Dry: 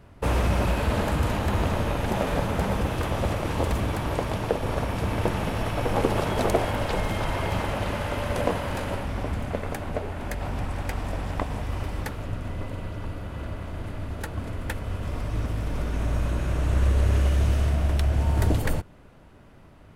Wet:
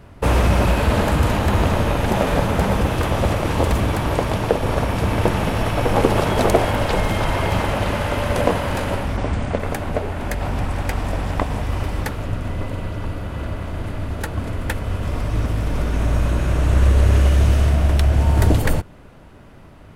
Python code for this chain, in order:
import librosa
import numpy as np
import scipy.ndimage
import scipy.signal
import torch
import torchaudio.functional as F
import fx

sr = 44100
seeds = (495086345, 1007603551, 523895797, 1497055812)

y = fx.steep_lowpass(x, sr, hz=9500.0, slope=96, at=(9.16, 9.58), fade=0.02)
y = y * librosa.db_to_amplitude(7.0)